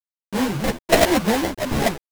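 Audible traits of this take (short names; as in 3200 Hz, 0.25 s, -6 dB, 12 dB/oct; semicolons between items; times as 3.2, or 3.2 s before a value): a quantiser's noise floor 6-bit, dither none; phasing stages 4, 1.1 Hz, lowest notch 430–4300 Hz; aliases and images of a low sample rate 1300 Hz, jitter 20%; a shimmering, thickened sound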